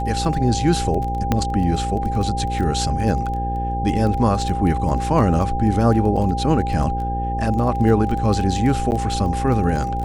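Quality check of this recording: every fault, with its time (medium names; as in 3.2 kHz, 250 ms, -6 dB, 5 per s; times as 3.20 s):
buzz 60 Hz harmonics 9 -25 dBFS
crackle 15 per s -25 dBFS
whine 800 Hz -24 dBFS
1.32 s: pop -5 dBFS
8.91–8.92 s: dropout 9.6 ms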